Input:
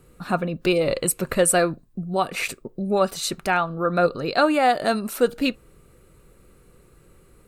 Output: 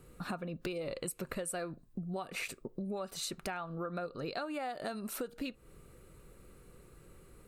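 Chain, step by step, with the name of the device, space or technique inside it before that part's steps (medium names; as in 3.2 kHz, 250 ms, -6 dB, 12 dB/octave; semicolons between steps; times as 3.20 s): serial compression, leveller first (compression 3:1, threshold -22 dBFS, peak gain reduction 7.5 dB; compression 4:1, threshold -34 dBFS, peak gain reduction 13 dB); trim -3.5 dB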